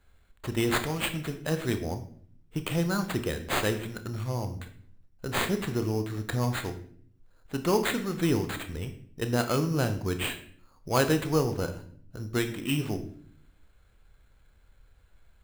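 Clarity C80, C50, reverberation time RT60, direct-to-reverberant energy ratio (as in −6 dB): 14.5 dB, 11.5 dB, 0.55 s, 8.0 dB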